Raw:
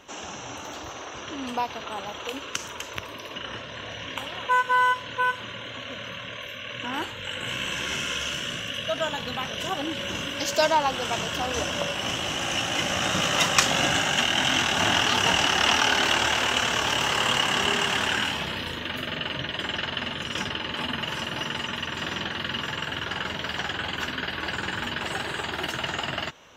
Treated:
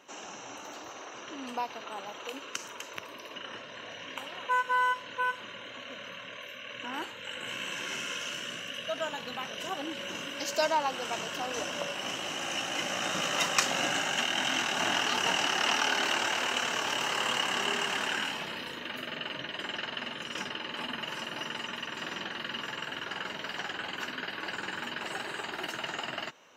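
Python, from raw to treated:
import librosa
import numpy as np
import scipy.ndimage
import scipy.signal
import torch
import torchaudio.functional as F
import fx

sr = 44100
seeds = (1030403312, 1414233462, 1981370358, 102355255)

y = scipy.signal.sosfilt(scipy.signal.butter(2, 210.0, 'highpass', fs=sr, output='sos'), x)
y = fx.notch(y, sr, hz=3400.0, q=9.1)
y = y * librosa.db_to_amplitude(-6.0)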